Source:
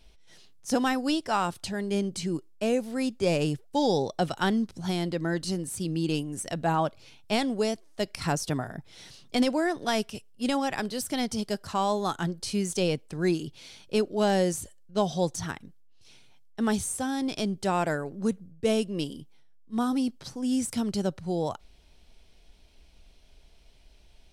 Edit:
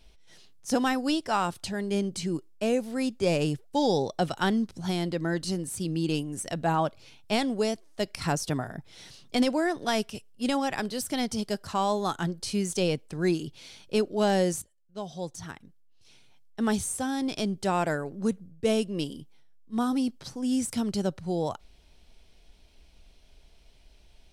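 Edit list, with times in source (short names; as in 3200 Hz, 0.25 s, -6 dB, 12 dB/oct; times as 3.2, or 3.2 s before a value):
14.62–16.7 fade in, from -19 dB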